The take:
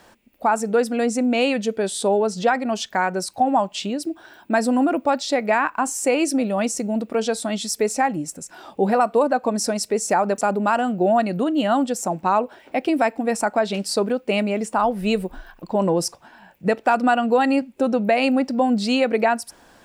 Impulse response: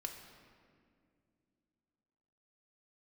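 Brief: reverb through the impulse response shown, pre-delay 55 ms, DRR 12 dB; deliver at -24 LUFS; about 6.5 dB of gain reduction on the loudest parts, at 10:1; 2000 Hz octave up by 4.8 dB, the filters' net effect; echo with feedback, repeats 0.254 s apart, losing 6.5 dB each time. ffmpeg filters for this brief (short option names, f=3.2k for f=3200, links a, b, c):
-filter_complex "[0:a]equalizer=f=2k:t=o:g=6.5,acompressor=threshold=-19dB:ratio=10,aecho=1:1:254|508|762|1016|1270|1524:0.473|0.222|0.105|0.0491|0.0231|0.0109,asplit=2[a][b];[1:a]atrim=start_sample=2205,adelay=55[c];[b][c]afir=irnorm=-1:irlink=0,volume=-10dB[d];[a][d]amix=inputs=2:normalize=0,volume=-0.5dB"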